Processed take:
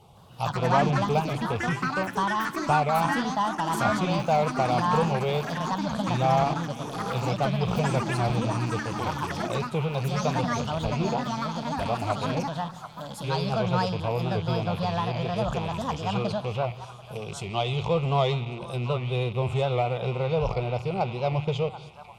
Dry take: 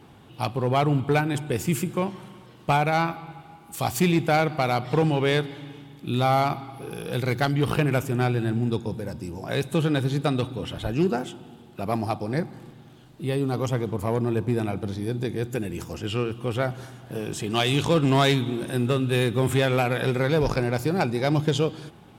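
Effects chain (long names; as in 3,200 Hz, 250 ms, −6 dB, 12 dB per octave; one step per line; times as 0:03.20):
loose part that buzzes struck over −30 dBFS, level −23 dBFS
treble cut that deepens with the level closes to 2,900 Hz, closed at −22 dBFS
phaser with its sweep stopped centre 700 Hz, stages 4
delay with pitch and tempo change per echo 157 ms, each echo +5 semitones, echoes 3
on a send: echo through a band-pass that steps 740 ms, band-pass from 1,200 Hz, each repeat 1.4 octaves, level −9 dB
on the sum: wow of a warped record 78 rpm, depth 100 cents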